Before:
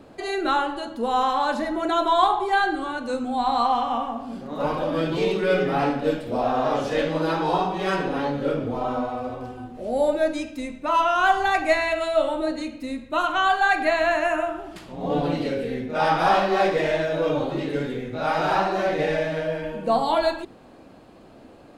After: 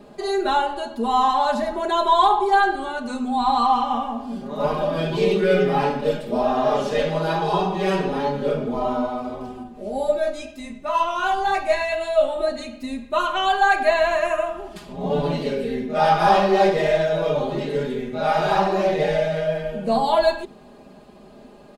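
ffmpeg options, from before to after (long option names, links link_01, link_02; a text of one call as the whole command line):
ffmpeg -i in.wav -filter_complex "[0:a]asettb=1/sr,asplit=3[link_01][link_02][link_03];[link_01]atrim=end=9.634[link_04];[link_02]atrim=start=9.63:end=12.39,asetpts=PTS-STARTPTS,afade=type=in:duration=0.004:curve=qsin,afade=type=out:start_time=2.756:duration=0.004:curve=qsin,flanger=delay=17:depth=2.7:speed=2[link_05];[link_03]atrim=start=12.386[link_06];[link_04][link_05]acrossfade=duration=0.004:curve1=hsin:curve2=qsin[link_07];[link_07][link_06]acrossfade=duration=0.004:curve1=qsin:curve2=hsin,equalizer=frequency=2000:width=1.5:gain=-3,bandreject=frequency=1400:width=21,aecho=1:1:4.9:0.96" out.wav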